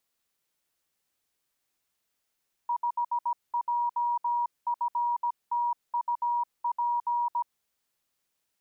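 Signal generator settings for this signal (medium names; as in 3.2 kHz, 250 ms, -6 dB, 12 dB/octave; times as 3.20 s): Morse "5JFTUP" 17 wpm 956 Hz -24.5 dBFS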